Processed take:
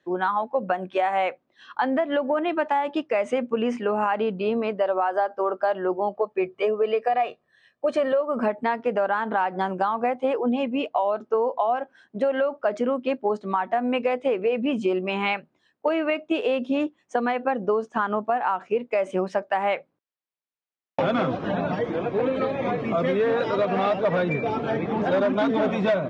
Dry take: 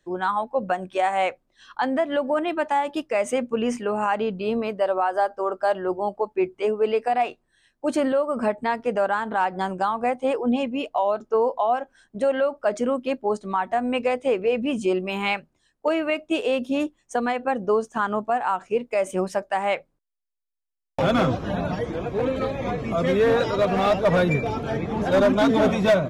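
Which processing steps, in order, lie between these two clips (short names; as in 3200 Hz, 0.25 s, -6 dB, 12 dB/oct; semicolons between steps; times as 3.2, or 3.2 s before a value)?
6.16–8.21 comb 1.7 ms, depth 59%; compressor, threshold -22 dBFS, peak gain reduction 8 dB; BPF 170–3400 Hz; gain +3 dB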